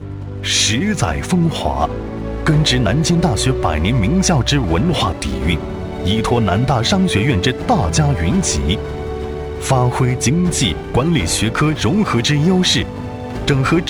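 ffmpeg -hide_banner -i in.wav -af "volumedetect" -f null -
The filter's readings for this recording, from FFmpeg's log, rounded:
mean_volume: -16.1 dB
max_volume: -3.7 dB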